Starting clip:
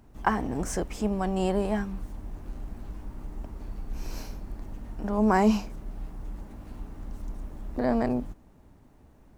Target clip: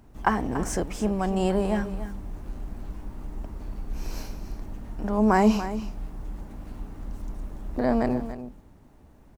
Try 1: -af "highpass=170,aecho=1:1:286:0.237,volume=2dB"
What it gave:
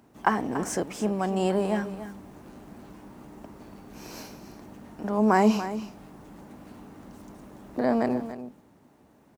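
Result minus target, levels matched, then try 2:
125 Hz band −4.0 dB
-af "aecho=1:1:286:0.237,volume=2dB"

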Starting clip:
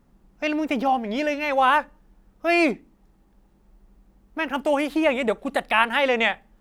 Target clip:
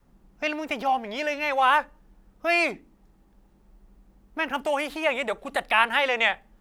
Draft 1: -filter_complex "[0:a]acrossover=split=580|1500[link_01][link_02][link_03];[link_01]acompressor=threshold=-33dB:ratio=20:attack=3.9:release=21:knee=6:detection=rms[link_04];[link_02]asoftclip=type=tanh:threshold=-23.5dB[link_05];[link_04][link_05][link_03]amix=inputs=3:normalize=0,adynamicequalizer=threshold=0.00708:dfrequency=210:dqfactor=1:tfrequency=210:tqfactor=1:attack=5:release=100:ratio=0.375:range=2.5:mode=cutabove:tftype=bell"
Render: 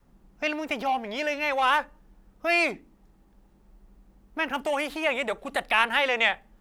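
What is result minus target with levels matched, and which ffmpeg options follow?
soft clipping: distortion +13 dB
-filter_complex "[0:a]acrossover=split=580|1500[link_01][link_02][link_03];[link_01]acompressor=threshold=-33dB:ratio=20:attack=3.9:release=21:knee=6:detection=rms[link_04];[link_02]asoftclip=type=tanh:threshold=-13.5dB[link_05];[link_04][link_05][link_03]amix=inputs=3:normalize=0,adynamicequalizer=threshold=0.00708:dfrequency=210:dqfactor=1:tfrequency=210:tqfactor=1:attack=5:release=100:ratio=0.375:range=2.5:mode=cutabove:tftype=bell"

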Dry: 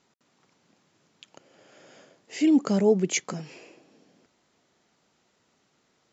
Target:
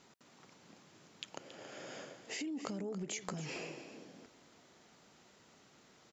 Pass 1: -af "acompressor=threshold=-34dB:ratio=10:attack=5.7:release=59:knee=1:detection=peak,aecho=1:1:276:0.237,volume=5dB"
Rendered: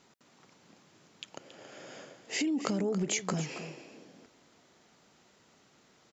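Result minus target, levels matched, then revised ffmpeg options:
downward compressor: peak gain reduction −10 dB
-af "acompressor=threshold=-45dB:ratio=10:attack=5.7:release=59:knee=1:detection=peak,aecho=1:1:276:0.237,volume=5dB"

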